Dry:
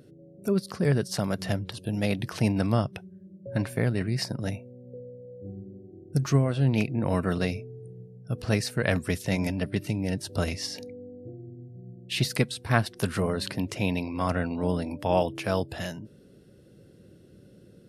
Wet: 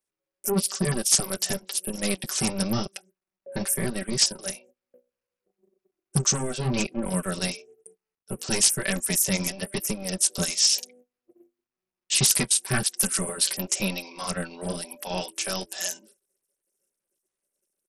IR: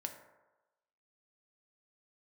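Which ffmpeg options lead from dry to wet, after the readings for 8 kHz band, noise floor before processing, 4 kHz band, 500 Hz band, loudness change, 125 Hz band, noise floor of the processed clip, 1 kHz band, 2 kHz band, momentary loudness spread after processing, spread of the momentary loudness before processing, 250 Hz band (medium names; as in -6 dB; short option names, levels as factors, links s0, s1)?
+18.5 dB, -54 dBFS, +9.0 dB, -3.0 dB, +3.5 dB, -5.5 dB, under -85 dBFS, -3.0 dB, +0.5 dB, 13 LU, 19 LU, -2.5 dB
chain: -filter_complex "[0:a]acrossover=split=330|1100[s0][s1][s2];[s0]acrusher=bits=3:mix=0:aa=0.5[s3];[s1]alimiter=level_in=1.26:limit=0.0631:level=0:latency=1:release=386,volume=0.794[s4];[s3][s4][s2]amix=inputs=3:normalize=0,equalizer=f=2900:t=o:w=2.7:g=3,aecho=1:1:5.2:0.81,flanger=delay=3.6:depth=8.7:regen=-26:speed=1:shape=sinusoidal,bass=f=250:g=2,treble=f=4000:g=12,aexciter=amount=5.1:drive=0.9:freq=5600,agate=range=0.0224:threshold=0.00355:ratio=16:detection=peak,asoftclip=type=hard:threshold=0.282,volume=0.841" -ar 44100 -c:a sbc -b:a 64k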